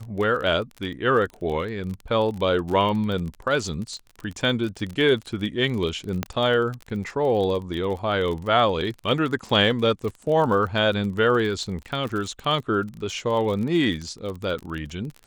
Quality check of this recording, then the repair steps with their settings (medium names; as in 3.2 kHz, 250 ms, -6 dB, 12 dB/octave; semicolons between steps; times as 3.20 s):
crackle 30 per s -29 dBFS
6.23 s: pop -10 dBFS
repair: de-click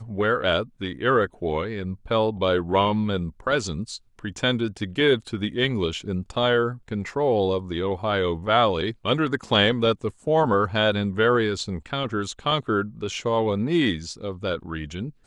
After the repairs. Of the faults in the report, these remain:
nothing left